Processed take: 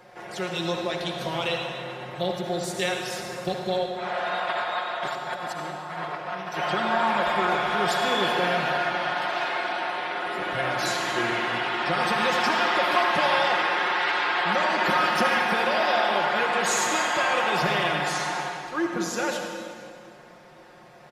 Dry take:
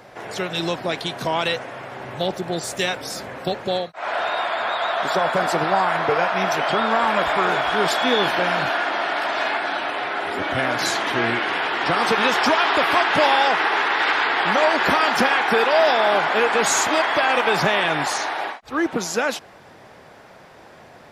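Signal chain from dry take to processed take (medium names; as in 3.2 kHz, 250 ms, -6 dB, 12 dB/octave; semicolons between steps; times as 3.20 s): comb 5.6 ms, depth 72%; 4.40–6.57 s: compressor with a negative ratio -24 dBFS, ratio -0.5; reverberation RT60 2.2 s, pre-delay 56 ms, DRR 2.5 dB; trim -8 dB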